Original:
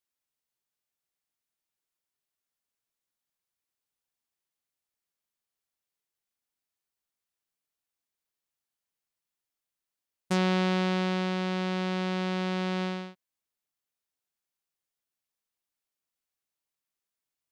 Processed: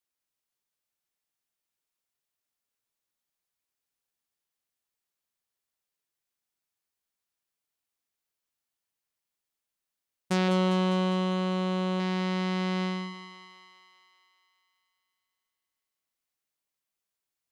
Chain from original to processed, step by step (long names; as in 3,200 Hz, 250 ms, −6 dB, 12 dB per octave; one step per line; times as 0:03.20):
0:10.48–0:12.00: thirty-one-band graphic EQ 500 Hz +10 dB, 2,000 Hz −10 dB, 5,000 Hz −11 dB
on a send: feedback echo with a high-pass in the loop 201 ms, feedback 66%, high-pass 380 Hz, level −8 dB